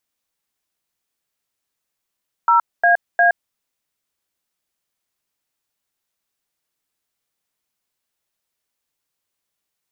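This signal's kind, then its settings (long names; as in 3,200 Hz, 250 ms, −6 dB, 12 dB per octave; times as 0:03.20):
touch tones "0AA", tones 119 ms, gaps 236 ms, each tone −13 dBFS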